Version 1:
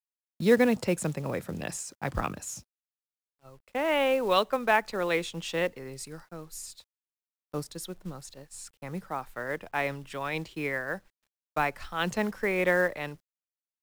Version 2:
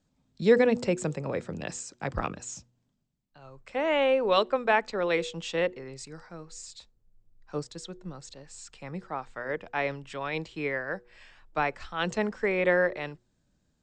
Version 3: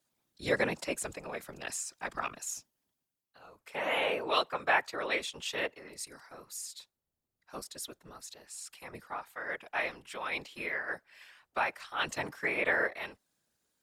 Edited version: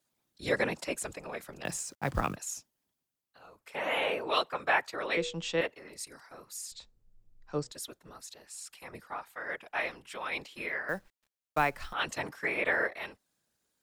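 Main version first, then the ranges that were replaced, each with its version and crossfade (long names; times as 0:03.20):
3
0:01.65–0:02.36: punch in from 1
0:05.17–0:05.61: punch in from 2
0:06.72–0:07.72: punch in from 2
0:10.89–0:11.93: punch in from 1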